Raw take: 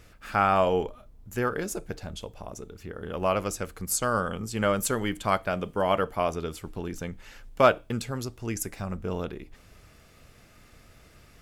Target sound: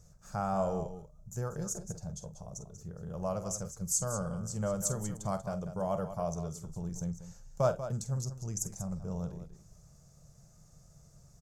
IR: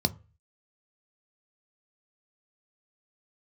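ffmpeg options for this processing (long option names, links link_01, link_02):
-filter_complex "[0:a]firequalizer=gain_entry='entry(100,0);entry(150,11);entry(260,-13);entry(590,-2);entry(2100,-21);entry(2900,-21);entry(6300,9);entry(10000,-5)':delay=0.05:min_phase=1,asplit=2[link_01][link_02];[link_02]aecho=0:1:46.65|189.5:0.251|0.282[link_03];[link_01][link_03]amix=inputs=2:normalize=0,volume=-5.5dB"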